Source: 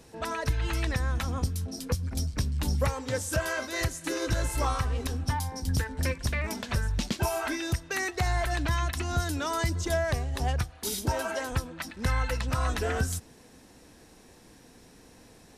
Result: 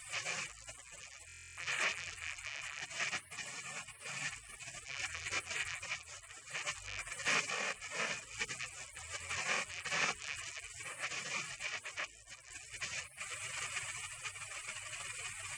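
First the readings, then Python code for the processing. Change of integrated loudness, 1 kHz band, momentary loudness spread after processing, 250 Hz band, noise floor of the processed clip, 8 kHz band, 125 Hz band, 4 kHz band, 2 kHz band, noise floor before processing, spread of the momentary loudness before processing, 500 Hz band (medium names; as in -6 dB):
-9.5 dB, -12.5 dB, 12 LU, -24.0 dB, -56 dBFS, -4.5 dB, -27.5 dB, -4.0 dB, -3.5 dB, -55 dBFS, 4 LU, -18.5 dB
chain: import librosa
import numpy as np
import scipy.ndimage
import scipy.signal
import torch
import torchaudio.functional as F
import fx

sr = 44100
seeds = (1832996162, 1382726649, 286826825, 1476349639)

y = np.sign(x) * np.sqrt(np.mean(np.square(x)))
y = scipy.signal.sosfilt(scipy.signal.ellip(3, 1.0, 40, [190.0, 6500.0], 'bandpass', fs=sr, output='sos'), y)
y = fx.spec_gate(y, sr, threshold_db=-25, keep='weak')
y = fx.tremolo_random(y, sr, seeds[0], hz=1.2, depth_pct=55)
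y = fx.high_shelf_res(y, sr, hz=3000.0, db=-6.5, q=3.0)
y = fx.hum_notches(y, sr, base_hz=60, count=7)
y = y + 0.34 * np.pad(y, (int(1.7 * sr / 1000.0), 0))[:len(y)]
y = fx.buffer_glitch(y, sr, at_s=(1.27,), block=1024, repeats=12)
y = F.gain(torch.from_numpy(y), 12.0).numpy()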